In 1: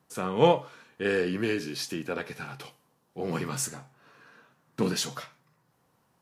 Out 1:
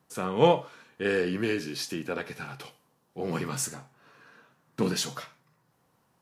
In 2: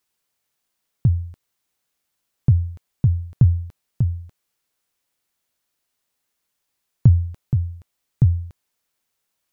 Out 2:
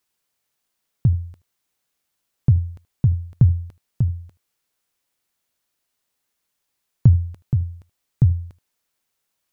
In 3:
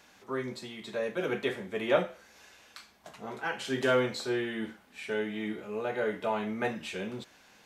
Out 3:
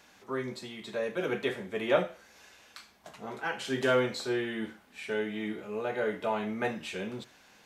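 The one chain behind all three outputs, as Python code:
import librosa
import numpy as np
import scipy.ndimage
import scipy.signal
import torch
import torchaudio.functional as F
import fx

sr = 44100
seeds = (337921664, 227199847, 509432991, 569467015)

y = x + 10.0 ** (-21.5 / 20.0) * np.pad(x, (int(77 * sr / 1000.0), 0))[:len(x)]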